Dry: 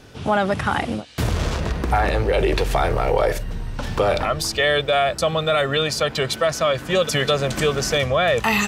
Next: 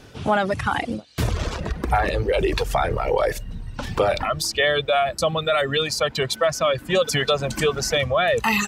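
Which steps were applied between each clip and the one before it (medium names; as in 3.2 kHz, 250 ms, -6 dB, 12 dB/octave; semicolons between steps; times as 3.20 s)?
reverb removal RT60 1.5 s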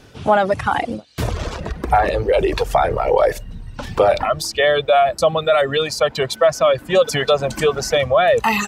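dynamic bell 670 Hz, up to +7 dB, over -33 dBFS, Q 0.82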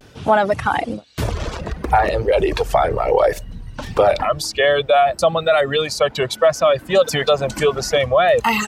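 vibrato 0.61 Hz 51 cents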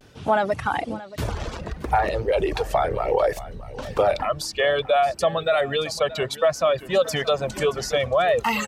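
delay 626 ms -17 dB; trim -5.5 dB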